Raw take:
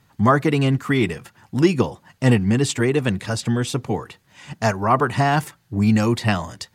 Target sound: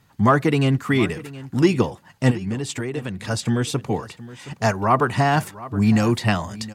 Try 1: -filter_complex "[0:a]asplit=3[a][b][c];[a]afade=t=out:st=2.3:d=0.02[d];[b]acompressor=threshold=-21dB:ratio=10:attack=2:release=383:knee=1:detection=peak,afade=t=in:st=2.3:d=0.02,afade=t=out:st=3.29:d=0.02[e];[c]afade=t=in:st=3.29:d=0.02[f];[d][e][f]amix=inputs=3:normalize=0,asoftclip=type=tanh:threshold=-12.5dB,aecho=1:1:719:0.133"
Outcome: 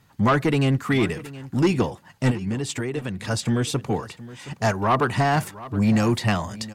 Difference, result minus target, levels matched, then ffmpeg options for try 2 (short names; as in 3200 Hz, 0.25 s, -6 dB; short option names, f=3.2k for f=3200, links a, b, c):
soft clip: distortion +18 dB
-filter_complex "[0:a]asplit=3[a][b][c];[a]afade=t=out:st=2.3:d=0.02[d];[b]acompressor=threshold=-21dB:ratio=10:attack=2:release=383:knee=1:detection=peak,afade=t=in:st=2.3:d=0.02,afade=t=out:st=3.29:d=0.02[e];[c]afade=t=in:st=3.29:d=0.02[f];[d][e][f]amix=inputs=3:normalize=0,asoftclip=type=tanh:threshold=-0.5dB,aecho=1:1:719:0.133"